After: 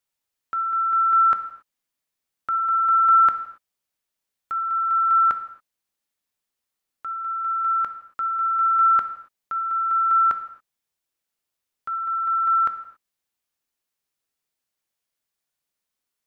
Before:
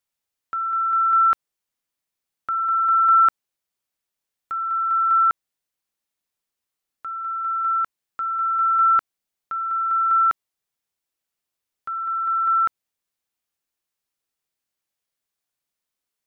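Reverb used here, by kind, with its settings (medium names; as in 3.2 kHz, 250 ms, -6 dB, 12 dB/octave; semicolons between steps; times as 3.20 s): gated-style reverb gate 300 ms falling, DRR 8.5 dB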